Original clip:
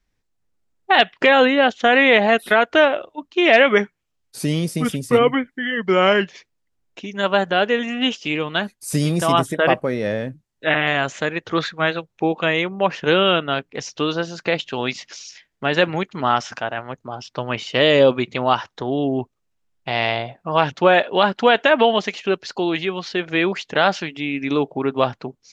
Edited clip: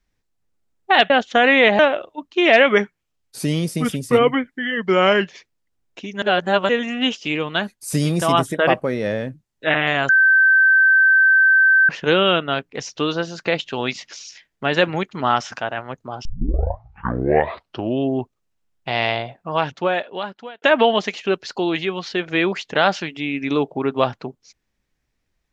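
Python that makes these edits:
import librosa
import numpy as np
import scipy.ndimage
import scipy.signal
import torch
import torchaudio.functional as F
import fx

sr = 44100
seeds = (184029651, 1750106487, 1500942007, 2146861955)

y = fx.edit(x, sr, fx.cut(start_s=1.1, length_s=0.49),
    fx.cut(start_s=2.28, length_s=0.51),
    fx.reverse_span(start_s=7.22, length_s=0.47),
    fx.bleep(start_s=11.09, length_s=1.8, hz=1550.0, db=-10.0),
    fx.tape_start(start_s=17.25, length_s=1.86),
    fx.fade_out_span(start_s=20.12, length_s=1.5), tone=tone)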